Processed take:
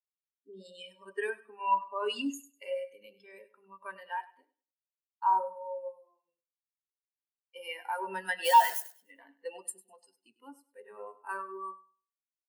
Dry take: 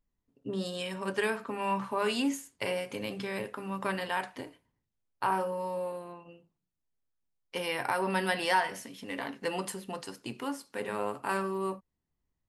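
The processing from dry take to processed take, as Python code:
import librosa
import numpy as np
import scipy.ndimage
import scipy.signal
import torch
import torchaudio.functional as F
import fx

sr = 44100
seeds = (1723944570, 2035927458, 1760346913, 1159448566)

p1 = fx.quant_companded(x, sr, bits=2, at=(8.44, 8.96), fade=0.02)
p2 = fx.riaa(p1, sr, side='recording')
p3 = p2 + fx.echo_feedback(p2, sr, ms=100, feedback_pct=54, wet_db=-8.0, dry=0)
p4 = fx.spectral_expand(p3, sr, expansion=2.5)
y = F.gain(torch.from_numpy(p4), -4.5).numpy()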